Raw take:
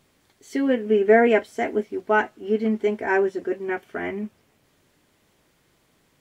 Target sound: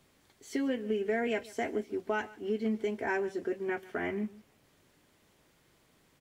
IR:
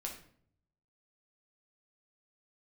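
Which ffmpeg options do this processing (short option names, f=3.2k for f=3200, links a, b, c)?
-filter_complex "[0:a]acrossover=split=140|3000[a][b][c];[b]acompressor=threshold=-27dB:ratio=6[d];[a][d][c]amix=inputs=3:normalize=0,asplit=2[e][f];[f]aecho=0:1:143:0.1[g];[e][g]amix=inputs=2:normalize=0,volume=-3dB"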